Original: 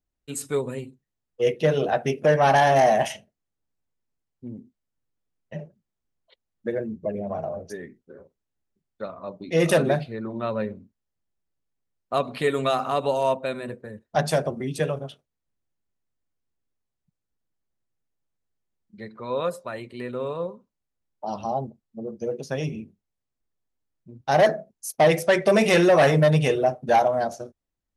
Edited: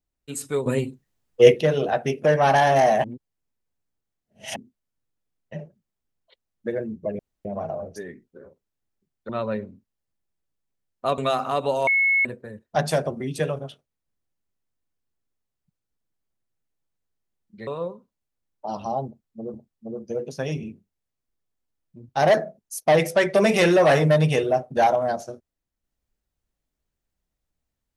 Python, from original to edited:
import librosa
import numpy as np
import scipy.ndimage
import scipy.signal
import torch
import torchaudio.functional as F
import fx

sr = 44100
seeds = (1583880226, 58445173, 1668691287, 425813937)

y = fx.edit(x, sr, fx.clip_gain(start_s=0.66, length_s=0.95, db=9.5),
    fx.reverse_span(start_s=3.04, length_s=1.52),
    fx.insert_room_tone(at_s=7.19, length_s=0.26),
    fx.cut(start_s=9.03, length_s=1.34),
    fx.cut(start_s=12.26, length_s=0.32),
    fx.bleep(start_s=13.27, length_s=0.38, hz=2190.0, db=-16.5),
    fx.cut(start_s=19.07, length_s=1.19),
    fx.repeat(start_s=21.66, length_s=0.47, count=2), tone=tone)